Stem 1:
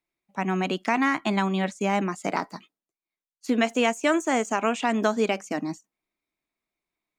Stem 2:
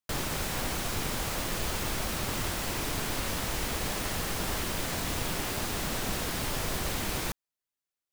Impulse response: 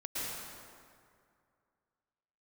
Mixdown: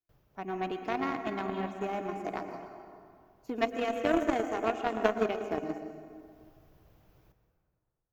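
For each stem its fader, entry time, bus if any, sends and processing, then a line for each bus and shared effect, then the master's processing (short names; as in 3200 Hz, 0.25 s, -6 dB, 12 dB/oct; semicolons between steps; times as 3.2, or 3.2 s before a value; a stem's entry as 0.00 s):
+1.5 dB, 0.00 s, send -3.5 dB, notch 1000 Hz, Q 27; comb 2.8 ms, depth 52%
-16.5 dB, 0.00 s, send -11 dB, high shelf 9800 Hz -5.5 dB; auto duck -14 dB, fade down 0.45 s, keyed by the first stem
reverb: on, RT60 2.2 s, pre-delay 0.103 s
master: graphic EQ 125/250/1000/2000/4000/8000 Hz +5/-8/-5/-8/-10/-10 dB; added harmonics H 3 -12 dB, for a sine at -8 dBFS; bell 9100 Hz -15 dB 0.46 oct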